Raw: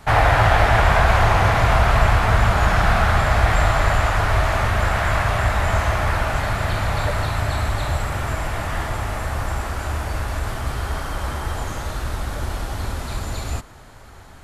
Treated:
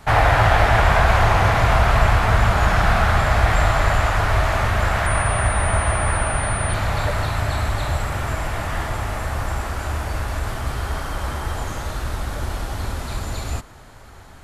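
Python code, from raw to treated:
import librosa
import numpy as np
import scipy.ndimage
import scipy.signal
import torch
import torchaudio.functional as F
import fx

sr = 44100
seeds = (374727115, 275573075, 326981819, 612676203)

y = fx.pwm(x, sr, carrier_hz=9300.0, at=(5.06, 6.74))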